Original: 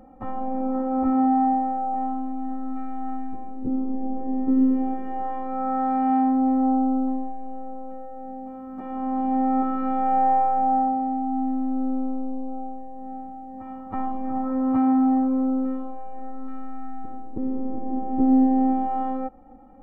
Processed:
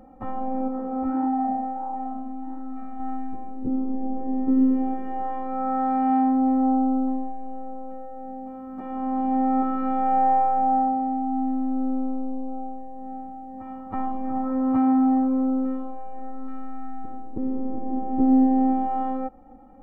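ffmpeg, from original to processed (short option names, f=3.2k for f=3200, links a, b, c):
-filter_complex "[0:a]asettb=1/sr,asplit=3[a][b][c];[a]atrim=end=0.684[d];[b]atrim=start=0.68:end=3,asetpts=PTS-STARTPTS,afade=t=in:d=0.004:c=qsin,afade=t=out:st=2.316:d=0.004:c=qsin,flanger=delay=3:depth=8.6:regen=-76:speed=1.5:shape=sinusoidal[e];[c]atrim=start=2.996[f];[d][e]acrossfade=d=0.004:c1=hsin:c2=qsin[g];[g][f]acrossfade=d=0.004:c1=qsin:c2=hsin"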